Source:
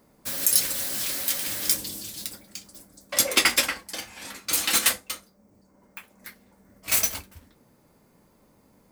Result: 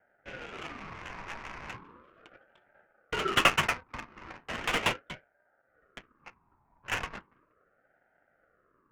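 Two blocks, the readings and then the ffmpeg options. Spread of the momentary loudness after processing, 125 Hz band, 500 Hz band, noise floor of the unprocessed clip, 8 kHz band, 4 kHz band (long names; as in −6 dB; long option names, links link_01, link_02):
22 LU, +3.0 dB, −1.0 dB, −61 dBFS, −21.0 dB, −8.0 dB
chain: -af "highpass=frequency=450:width_type=q:width=0.5412,highpass=frequency=450:width_type=q:width=1.307,lowpass=frequency=2400:width_type=q:width=0.5176,lowpass=frequency=2400:width_type=q:width=0.7071,lowpass=frequency=2400:width_type=q:width=1.932,afreqshift=-77,adynamicsmooth=sensitivity=7:basefreq=530,aeval=exprs='val(0)*sin(2*PI*780*n/s+780*0.4/0.37*sin(2*PI*0.37*n/s))':channel_layout=same,volume=4.5dB"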